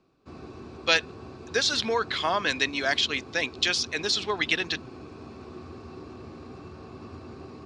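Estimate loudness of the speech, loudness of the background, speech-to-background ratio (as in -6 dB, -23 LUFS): -26.0 LUFS, -43.5 LUFS, 17.5 dB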